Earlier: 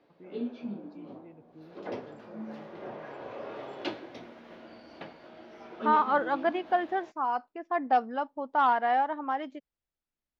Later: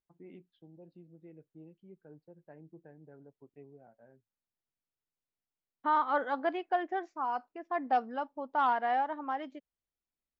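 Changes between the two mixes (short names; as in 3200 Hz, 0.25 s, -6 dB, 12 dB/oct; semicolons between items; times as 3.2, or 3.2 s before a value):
first voice: add air absorption 360 m; second voice -4.0 dB; background: muted; reverb: off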